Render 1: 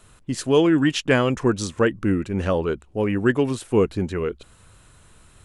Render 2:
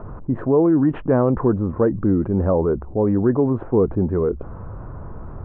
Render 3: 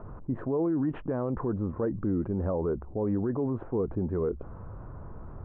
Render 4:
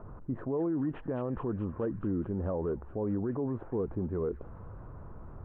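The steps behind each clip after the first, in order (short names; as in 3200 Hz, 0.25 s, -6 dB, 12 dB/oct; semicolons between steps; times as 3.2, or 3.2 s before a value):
inverse Chebyshev low-pass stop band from 4600 Hz, stop band 70 dB; fast leveller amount 50%
limiter -12.5 dBFS, peak gain reduction 7 dB; gain -8.5 dB
thin delay 0.214 s, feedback 74%, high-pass 2300 Hz, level -4 dB; gain -3.5 dB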